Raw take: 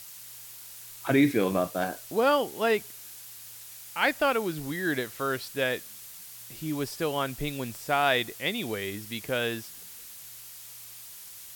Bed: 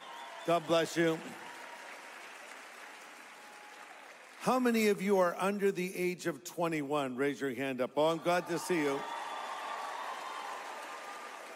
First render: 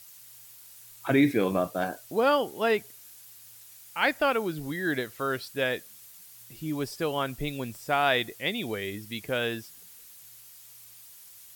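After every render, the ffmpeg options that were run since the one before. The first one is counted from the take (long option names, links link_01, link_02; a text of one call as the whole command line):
ffmpeg -i in.wav -af "afftdn=noise_reduction=7:noise_floor=-46" out.wav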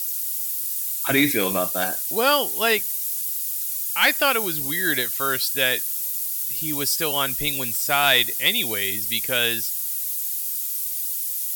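ffmpeg -i in.wav -af "crystalizer=i=9:c=0,asoftclip=type=tanh:threshold=-5.5dB" out.wav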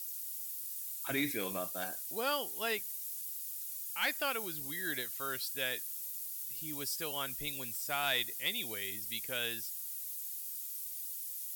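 ffmpeg -i in.wav -af "volume=-15dB" out.wav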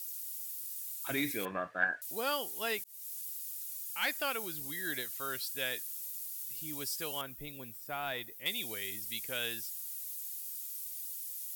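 ffmpeg -i in.wav -filter_complex "[0:a]asettb=1/sr,asplit=3[link_01][link_02][link_03];[link_01]atrim=end=1.454[link_04];[link_02]atrim=start=1.45:end=2.02,asetpts=PTS-STARTPTS,afade=type=in:duration=0.004:curve=qsin,afade=type=out:start_time=0.566:duration=0.004:curve=qsin,lowpass=frequency=1700:width_type=q:width=10[link_05];[link_03]atrim=start=2.016[link_06];[link_04][link_05]acrossfade=duration=0.004:curve1=hsin:curve2=qsin[link_07];[link_07][link_06]acrossfade=duration=0.004:curve1=qsin:curve2=hsin,asettb=1/sr,asplit=3[link_08][link_09][link_10];[link_08]atrim=end=7.214[link_11];[link_09]atrim=start=7.21:end=8.46,asetpts=PTS-STARTPTS,afade=type=in:duration=0.004:curve=qsin,afade=type=out:start_time=1.246:duration=0.004:curve=qsin,equalizer=frequency=7100:width=0.33:gain=-14[link_12];[link_10]atrim=start=8.456[link_13];[link_11][link_12]acrossfade=duration=0.004:curve1=hsin:curve2=qsin[link_14];[link_14][link_13]acrossfade=duration=0.004:curve1=qsin:curve2=hsin,asplit=2[link_15][link_16];[link_15]atrim=end=2.84,asetpts=PTS-STARTPTS,afade=type=out:start_time=2.836:duration=0.004:curve=hsin[link_17];[link_16]atrim=start=2.84,asetpts=PTS-STARTPTS,afade=type=in:duration=0.4:curve=qsin[link_18];[link_17][link_18]concat=n=2:v=0:a=1" out.wav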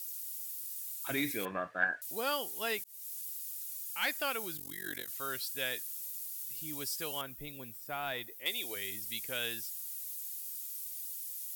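ffmpeg -i in.wav -filter_complex "[0:a]asettb=1/sr,asplit=3[link_01][link_02][link_03];[link_01]atrim=end=4.574[link_04];[link_02]atrim=start=4.57:end=5.08,asetpts=PTS-STARTPTS,afade=type=in:duration=0.004:curve=qsin,afade=type=out:start_time=0.506:duration=0.004:curve=qsin,tremolo=f=47:d=0.947[link_05];[link_03]atrim=start=5.076[link_06];[link_04][link_05]acrossfade=duration=0.004:curve1=hsin:curve2=qsin[link_07];[link_07][link_06]acrossfade=duration=0.004:curve1=qsin:curve2=hsin,asettb=1/sr,asplit=3[link_08][link_09][link_10];[link_08]atrim=end=8.274[link_11];[link_09]atrim=start=8.27:end=8.76,asetpts=PTS-STARTPTS,afade=type=in:duration=0.004:curve=qsin,afade=type=out:start_time=0.486:duration=0.004:curve=qsin,lowshelf=frequency=260:width_type=q:width=1.5:gain=-8[link_12];[link_10]atrim=start=8.756[link_13];[link_11][link_12]acrossfade=duration=0.004:curve1=hsin:curve2=qsin[link_14];[link_14][link_13]acrossfade=duration=0.004:curve1=qsin:curve2=hsin" out.wav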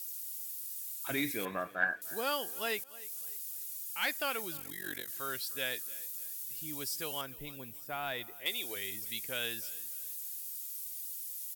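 ffmpeg -i in.wav -af "aecho=1:1:300|600|900:0.0944|0.0349|0.0129" out.wav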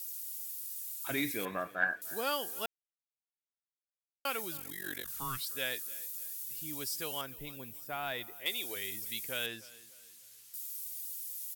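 ffmpeg -i in.wav -filter_complex "[0:a]asettb=1/sr,asplit=3[link_01][link_02][link_03];[link_01]atrim=end=5.044[link_04];[link_02]atrim=start=5.04:end=5.46,asetpts=PTS-STARTPTS,afade=type=in:duration=0.004:curve=qsin,afade=type=out:start_time=0.416:duration=0.004:curve=qsin,afreqshift=-260[link_05];[link_03]atrim=start=5.456[link_06];[link_04][link_05]acrossfade=duration=0.004:curve1=hsin:curve2=qsin[link_07];[link_07][link_06]acrossfade=duration=0.004:curve1=qsin:curve2=hsin,asettb=1/sr,asplit=3[link_08][link_09][link_10];[link_08]atrim=end=9.464[link_11];[link_09]atrim=start=9.46:end=10.54,asetpts=PTS-STARTPTS,afade=type=in:duration=0.004:curve=qsin,afade=type=out:start_time=1.076:duration=0.004:curve=qsin,aemphasis=mode=reproduction:type=50fm[link_12];[link_10]atrim=start=10.536[link_13];[link_11][link_12]acrossfade=duration=0.004:curve1=hsin:curve2=qsin[link_14];[link_14][link_13]acrossfade=duration=0.004:curve1=qsin:curve2=hsin,asplit=3[link_15][link_16][link_17];[link_15]atrim=end=2.66,asetpts=PTS-STARTPTS,afade=type=out:start_time=2.656:duration=0.004:curve=hsin[link_18];[link_16]atrim=start=2.66:end=4.25,asetpts=PTS-STARTPTS,volume=0[link_19];[link_17]atrim=start=4.25,asetpts=PTS-STARTPTS,afade=type=in:duration=0.004:curve=hsin[link_20];[link_18][link_19][link_20]concat=n=3:v=0:a=1" out.wav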